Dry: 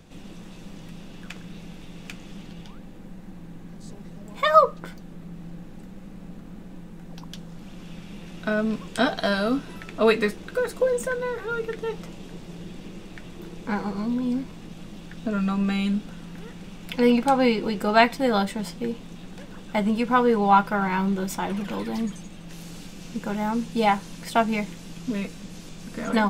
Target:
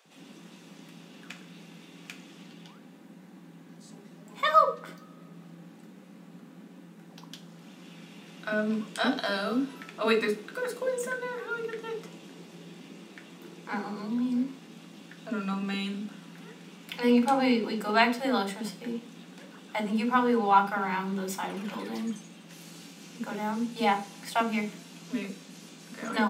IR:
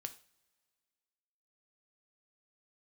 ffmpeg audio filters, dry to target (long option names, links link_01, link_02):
-filter_complex "[0:a]highpass=frequency=200:width=0.5412,highpass=frequency=200:width=1.3066,acrossover=split=550[link_01][link_02];[link_01]adelay=50[link_03];[link_03][link_02]amix=inputs=2:normalize=0[link_04];[1:a]atrim=start_sample=2205[link_05];[link_04][link_05]afir=irnorm=-1:irlink=0"